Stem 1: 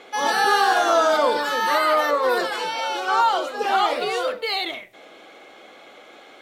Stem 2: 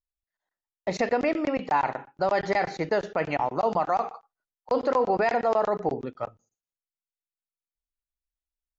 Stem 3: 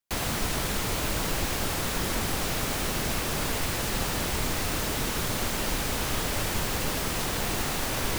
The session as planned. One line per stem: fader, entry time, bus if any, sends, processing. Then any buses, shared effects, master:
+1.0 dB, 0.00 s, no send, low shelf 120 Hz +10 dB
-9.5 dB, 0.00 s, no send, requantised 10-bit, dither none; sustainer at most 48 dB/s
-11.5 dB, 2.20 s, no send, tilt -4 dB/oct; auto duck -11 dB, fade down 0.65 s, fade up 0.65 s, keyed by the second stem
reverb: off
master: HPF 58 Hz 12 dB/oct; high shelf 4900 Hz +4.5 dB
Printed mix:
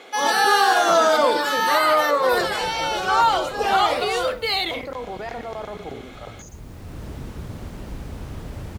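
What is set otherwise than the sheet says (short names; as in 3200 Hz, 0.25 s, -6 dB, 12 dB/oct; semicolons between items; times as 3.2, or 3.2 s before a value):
stem 1: missing low shelf 120 Hz +10 dB; stem 2: missing requantised 10-bit, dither none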